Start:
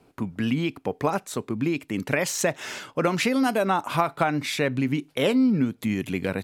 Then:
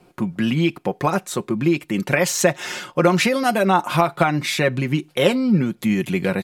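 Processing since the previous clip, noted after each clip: comb 5.6 ms, depth 60%; trim +4.5 dB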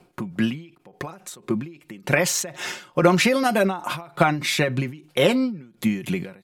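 endings held to a fixed fall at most 120 dB/s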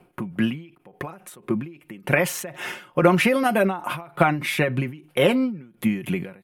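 high-order bell 5.4 kHz -10 dB 1.3 oct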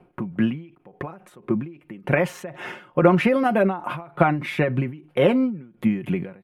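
low-pass 1.4 kHz 6 dB/octave; trim +1.5 dB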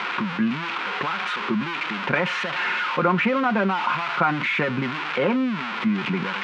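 zero-crossing glitches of -11 dBFS; cabinet simulation 200–3000 Hz, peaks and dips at 210 Hz +6 dB, 330 Hz -4 dB, 630 Hz -6 dB, 990 Hz +8 dB, 1.4 kHz +8 dB, 2.4 kHz +3 dB; level flattener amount 50%; trim -6 dB

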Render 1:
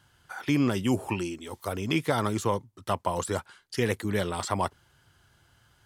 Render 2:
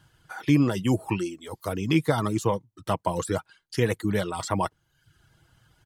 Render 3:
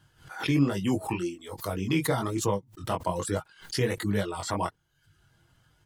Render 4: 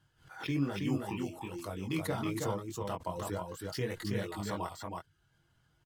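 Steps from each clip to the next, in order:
reverb removal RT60 0.67 s; bass shelf 370 Hz +6 dB; comb 6.3 ms, depth 34%
chorus 1.2 Hz, delay 20 ms, depth 3.3 ms; swell ahead of each attack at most 140 dB/s
on a send: delay 322 ms -3.5 dB; on the sum: decimation joined by straight lines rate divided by 2×; trim -8.5 dB

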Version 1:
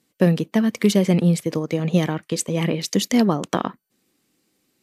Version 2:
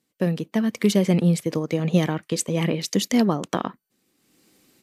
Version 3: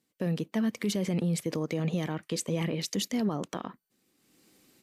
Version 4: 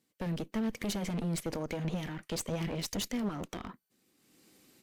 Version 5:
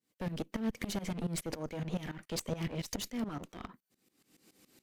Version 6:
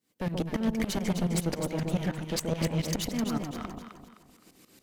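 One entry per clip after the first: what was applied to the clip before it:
level rider gain up to 16 dB; trim -6.5 dB
peak limiter -18 dBFS, peak gain reduction 10.5 dB; trim -3 dB
one-sided clip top -39.5 dBFS
tremolo saw up 7.1 Hz, depth 90%; trim +2 dB
echo whose repeats swap between lows and highs 129 ms, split 910 Hz, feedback 61%, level -2.5 dB; trim +5.5 dB

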